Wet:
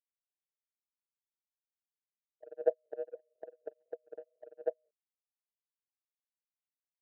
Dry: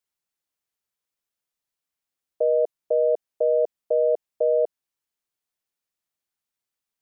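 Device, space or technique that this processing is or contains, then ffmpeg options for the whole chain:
double-tracked vocal: -filter_complex "[0:a]asplit=2[a][b];[b]adelay=30,volume=-6dB[c];[a][c]amix=inputs=2:normalize=0,aecho=1:1:37.9|207:0.316|0.708,flanger=delay=17.5:depth=5.2:speed=2.5,asplit=3[d][e][f];[d]afade=t=out:st=2.47:d=0.02[g];[e]lowshelf=f=410:g=2,afade=t=in:st=2.47:d=0.02,afade=t=out:st=3.05:d=0.02[h];[f]afade=t=in:st=3.05:d=0.02[i];[g][h][i]amix=inputs=3:normalize=0,agate=range=-57dB:threshold=-20dB:ratio=16:detection=peak,equalizer=f=640:w=1.2:g=-5,volume=13dB"

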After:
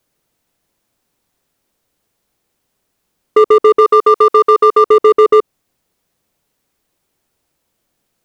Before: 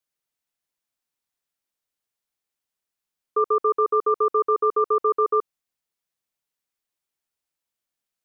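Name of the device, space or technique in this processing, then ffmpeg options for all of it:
mastering chain: -filter_complex "[0:a]asplit=3[a][b][c];[a]afade=t=out:st=3.8:d=0.02[d];[b]tiltshelf=f=660:g=-7.5,afade=t=in:st=3.8:d=0.02,afade=t=out:st=4.84:d=0.02[e];[c]afade=t=in:st=4.84:d=0.02[f];[d][e][f]amix=inputs=3:normalize=0,equalizer=f=430:t=o:w=1.6:g=2,acompressor=threshold=-22dB:ratio=1.5,tiltshelf=f=720:g=5.5,asoftclip=type=hard:threshold=-15.5dB,alimiter=level_in=21.5dB:limit=-1dB:release=50:level=0:latency=1,volume=-1dB"

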